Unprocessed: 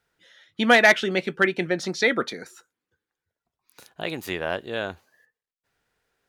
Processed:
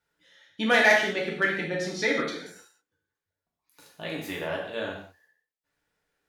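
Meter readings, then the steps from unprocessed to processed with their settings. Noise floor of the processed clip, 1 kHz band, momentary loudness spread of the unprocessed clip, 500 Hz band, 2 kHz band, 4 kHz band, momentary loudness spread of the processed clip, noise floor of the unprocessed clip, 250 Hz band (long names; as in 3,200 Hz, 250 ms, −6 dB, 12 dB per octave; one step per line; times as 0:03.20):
below −85 dBFS, −4.0 dB, 17 LU, −3.5 dB, −2.5 dB, −3.5 dB, 17 LU, below −85 dBFS, −4.5 dB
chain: reverb whose tail is shaped and stops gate 230 ms falling, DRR −3.5 dB
level −8.5 dB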